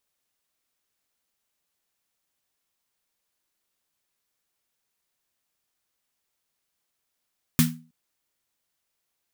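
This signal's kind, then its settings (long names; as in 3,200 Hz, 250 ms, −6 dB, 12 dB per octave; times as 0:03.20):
synth snare length 0.32 s, tones 160 Hz, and 240 Hz, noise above 1,100 Hz, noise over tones −4 dB, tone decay 0.38 s, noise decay 0.24 s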